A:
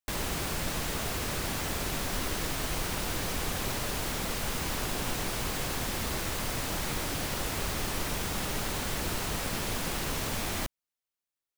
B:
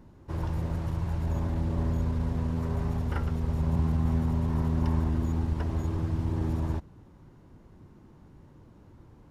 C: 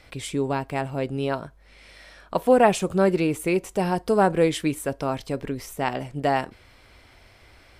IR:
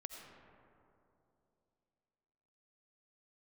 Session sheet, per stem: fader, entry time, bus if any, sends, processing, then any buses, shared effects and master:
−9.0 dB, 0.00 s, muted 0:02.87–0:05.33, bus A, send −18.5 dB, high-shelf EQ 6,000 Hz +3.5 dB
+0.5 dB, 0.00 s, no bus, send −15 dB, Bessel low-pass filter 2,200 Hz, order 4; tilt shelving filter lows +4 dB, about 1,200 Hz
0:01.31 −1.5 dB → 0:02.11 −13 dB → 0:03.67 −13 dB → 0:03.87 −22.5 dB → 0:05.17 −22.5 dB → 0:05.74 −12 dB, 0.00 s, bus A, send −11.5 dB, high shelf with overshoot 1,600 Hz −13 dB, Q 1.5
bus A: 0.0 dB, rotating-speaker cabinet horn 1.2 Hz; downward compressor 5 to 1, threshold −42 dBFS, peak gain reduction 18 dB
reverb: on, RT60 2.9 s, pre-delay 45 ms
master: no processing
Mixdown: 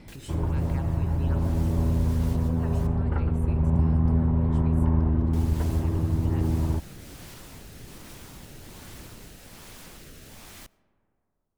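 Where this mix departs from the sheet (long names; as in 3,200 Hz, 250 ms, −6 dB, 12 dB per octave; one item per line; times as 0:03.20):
stem B: send off
stem C: missing high shelf with overshoot 1,600 Hz −13 dB, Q 1.5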